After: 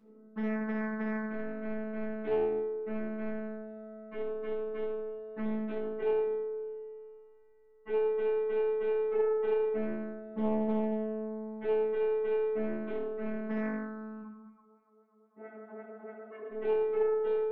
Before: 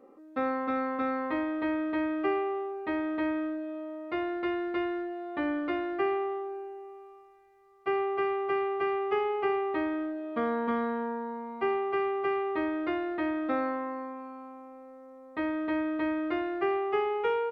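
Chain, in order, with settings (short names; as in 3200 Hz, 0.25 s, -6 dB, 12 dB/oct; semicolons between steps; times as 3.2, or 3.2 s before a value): EQ curve 330 Hz 0 dB, 710 Hz -13 dB, 1500 Hz -10 dB, 4000 Hz -21 dB; robotiser 217 Hz; 14.21–16.49 LFO band-pass sine 2.7 Hz -> 9.3 Hz 440–2100 Hz; reverb RT60 0.65 s, pre-delay 6 ms, DRR -7.5 dB; Doppler distortion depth 0.73 ms; gain -6.5 dB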